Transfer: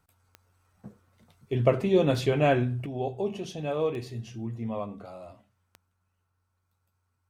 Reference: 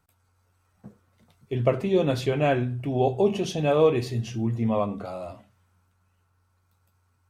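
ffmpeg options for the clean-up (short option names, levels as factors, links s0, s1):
-af "adeclick=t=4,asetnsamples=n=441:p=0,asendcmd='2.86 volume volume 8.5dB',volume=1"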